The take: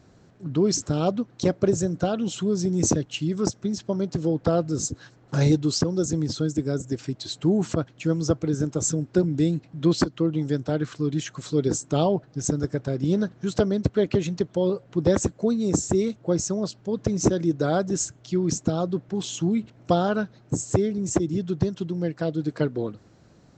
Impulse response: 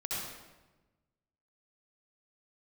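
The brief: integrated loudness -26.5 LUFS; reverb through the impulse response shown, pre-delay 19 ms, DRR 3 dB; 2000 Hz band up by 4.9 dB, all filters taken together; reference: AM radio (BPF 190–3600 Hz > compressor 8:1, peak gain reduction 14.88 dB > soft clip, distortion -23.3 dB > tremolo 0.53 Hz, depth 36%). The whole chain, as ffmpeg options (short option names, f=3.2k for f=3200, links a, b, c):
-filter_complex "[0:a]equalizer=f=2k:t=o:g=7.5,asplit=2[a][b];[1:a]atrim=start_sample=2205,adelay=19[c];[b][c]afir=irnorm=-1:irlink=0,volume=-7dB[d];[a][d]amix=inputs=2:normalize=0,highpass=190,lowpass=3.6k,acompressor=threshold=-29dB:ratio=8,asoftclip=threshold=-21.5dB,tremolo=f=0.53:d=0.36,volume=9.5dB"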